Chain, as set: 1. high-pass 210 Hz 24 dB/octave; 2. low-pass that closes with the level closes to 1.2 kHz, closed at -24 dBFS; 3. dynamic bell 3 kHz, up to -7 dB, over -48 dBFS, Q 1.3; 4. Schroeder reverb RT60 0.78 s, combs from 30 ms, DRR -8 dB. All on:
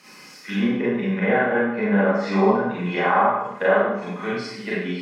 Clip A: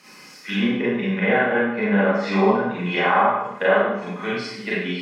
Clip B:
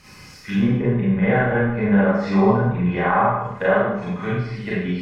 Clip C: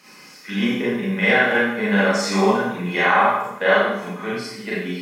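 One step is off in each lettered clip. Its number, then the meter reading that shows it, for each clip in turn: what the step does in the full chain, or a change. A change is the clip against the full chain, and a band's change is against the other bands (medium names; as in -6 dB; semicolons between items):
3, 4 kHz band +5.0 dB; 1, 125 Hz band +9.0 dB; 2, 4 kHz band +8.5 dB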